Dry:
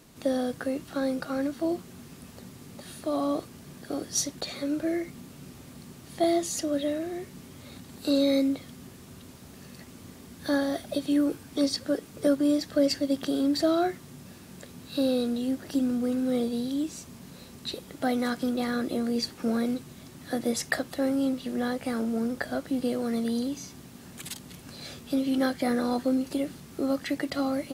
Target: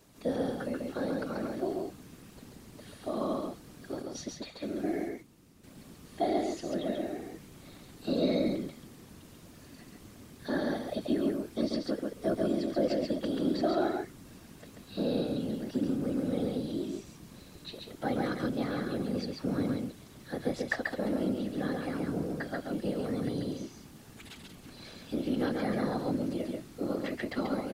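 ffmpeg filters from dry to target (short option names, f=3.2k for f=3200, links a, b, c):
-filter_complex "[0:a]asettb=1/sr,asplit=3[a][b][c];[a]atrim=end=4.024[d];[b]atrim=start=4.02:end=5.64,asetpts=PTS-STARTPTS,afade=t=in:d=0.004:c=qsin,afade=t=out:st=1.616:d=0.004:c=qsin,agate=range=-10dB:threshold=-35dB:ratio=16:detection=peak[e];[c]atrim=start=5.636[f];[d][e]acrossfade=d=0.004:c1=hsin:c2=qsin[g];[g][f]acrossfade=d=0.004:c1=qsin:c2=hsin,acrossover=split=4300[h][i];[i]acompressor=threshold=-52dB:ratio=4:attack=1:release=60[j];[h][j]amix=inputs=2:normalize=0,afftfilt=real='hypot(re,im)*cos(2*PI*random(0))':imag='hypot(re,im)*sin(2*PI*random(1))':win_size=512:overlap=0.75,aecho=1:1:137:0.708"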